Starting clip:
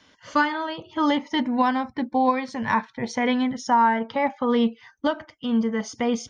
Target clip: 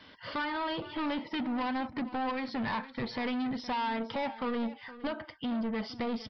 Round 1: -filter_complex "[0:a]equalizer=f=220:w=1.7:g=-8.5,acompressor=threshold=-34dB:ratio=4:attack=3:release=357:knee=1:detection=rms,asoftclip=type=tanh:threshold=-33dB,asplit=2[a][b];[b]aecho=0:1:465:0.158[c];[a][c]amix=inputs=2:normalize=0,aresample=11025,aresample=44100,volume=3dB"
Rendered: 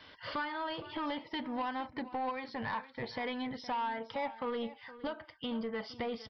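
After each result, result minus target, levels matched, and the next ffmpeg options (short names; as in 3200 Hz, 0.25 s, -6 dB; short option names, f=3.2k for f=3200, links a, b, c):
compressor: peak gain reduction +7.5 dB; 250 Hz band -3.0 dB
-filter_complex "[0:a]equalizer=f=220:w=1.7:g=-8.5,acompressor=threshold=-24dB:ratio=4:attack=3:release=357:knee=1:detection=rms,asoftclip=type=tanh:threshold=-33dB,asplit=2[a][b];[b]aecho=0:1:465:0.158[c];[a][c]amix=inputs=2:normalize=0,aresample=11025,aresample=44100,volume=3dB"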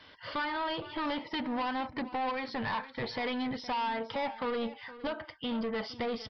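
250 Hz band -3.0 dB
-filter_complex "[0:a]acompressor=threshold=-24dB:ratio=4:attack=3:release=357:knee=1:detection=rms,asoftclip=type=tanh:threshold=-33dB,asplit=2[a][b];[b]aecho=0:1:465:0.158[c];[a][c]amix=inputs=2:normalize=0,aresample=11025,aresample=44100,volume=3dB"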